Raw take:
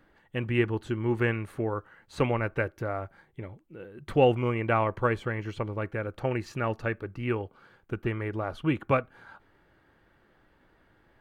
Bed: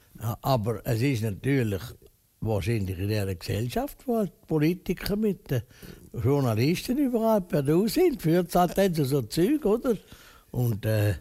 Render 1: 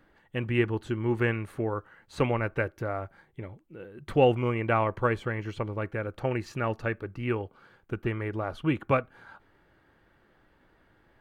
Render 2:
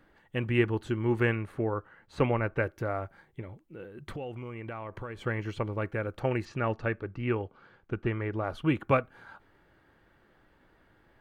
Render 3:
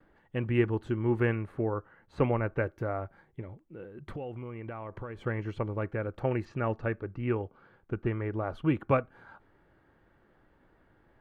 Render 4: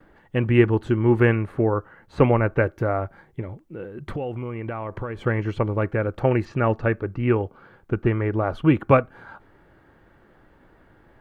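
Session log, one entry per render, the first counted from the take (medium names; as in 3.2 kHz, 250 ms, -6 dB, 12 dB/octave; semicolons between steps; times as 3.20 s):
no audible change
1.35–2.63 s: treble shelf 4.2 kHz -9.5 dB; 3.41–5.23 s: compression, threshold -36 dBFS; 6.45–8.44 s: distance through air 100 m
gate with hold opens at -57 dBFS; treble shelf 2.4 kHz -11 dB
trim +9.5 dB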